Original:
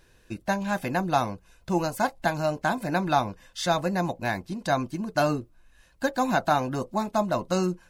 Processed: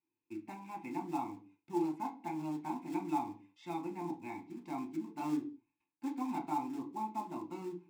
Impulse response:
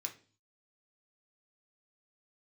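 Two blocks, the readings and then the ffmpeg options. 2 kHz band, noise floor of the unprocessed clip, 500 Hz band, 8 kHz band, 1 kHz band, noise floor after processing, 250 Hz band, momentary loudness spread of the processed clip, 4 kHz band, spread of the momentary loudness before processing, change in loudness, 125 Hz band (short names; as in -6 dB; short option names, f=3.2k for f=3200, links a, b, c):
-23.5 dB, -60 dBFS, -18.0 dB, -20.0 dB, -12.5 dB, under -85 dBFS, -8.5 dB, 10 LU, -24.0 dB, 6 LU, -12.5 dB, -19.5 dB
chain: -filter_complex "[0:a]highshelf=f=2.6k:g=-9.5,agate=range=-15dB:threshold=-54dB:ratio=16:detection=peak,asplit=3[a][b][c];[a]bandpass=f=300:t=q:w=8,volume=0dB[d];[b]bandpass=f=870:t=q:w=8,volume=-6dB[e];[c]bandpass=f=2.24k:t=q:w=8,volume=-9dB[f];[d][e][f]amix=inputs=3:normalize=0,asplit=2[g][h];[h]acrusher=bits=3:mode=log:mix=0:aa=0.000001,volume=-10dB[i];[g][i]amix=inputs=2:normalize=0[j];[1:a]atrim=start_sample=2205,afade=t=out:st=0.28:d=0.01,atrim=end_sample=12789[k];[j][k]afir=irnorm=-1:irlink=0,volume=1dB"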